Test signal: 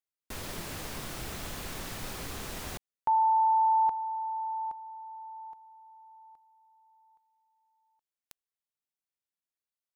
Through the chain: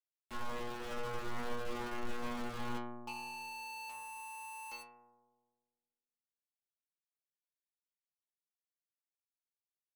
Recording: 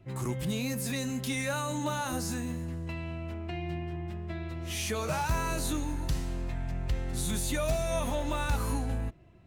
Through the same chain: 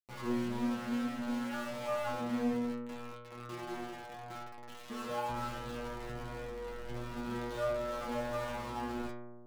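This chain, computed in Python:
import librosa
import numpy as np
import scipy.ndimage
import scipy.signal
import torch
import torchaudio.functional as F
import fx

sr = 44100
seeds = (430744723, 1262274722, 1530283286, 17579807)

y = scipy.signal.sosfilt(scipy.signal.cheby2(6, 70, 6900.0, 'lowpass', fs=sr, output='sos'), x)
y = fx.dynamic_eq(y, sr, hz=500.0, q=2.1, threshold_db=-47.0, ratio=5.0, max_db=5)
y = fx.fixed_phaser(y, sr, hz=440.0, stages=8)
y = y + 0.71 * np.pad(y, (int(3.6 * sr / 1000.0), 0))[:len(y)]
y = fx.quant_companded(y, sr, bits=2)
y = fx.comb_fb(y, sr, f0_hz=120.0, decay_s=1.8, harmonics='all', damping=0.5, mix_pct=100)
y = fx.doppler_dist(y, sr, depth_ms=0.2)
y = F.gain(torch.from_numpy(y), 12.0).numpy()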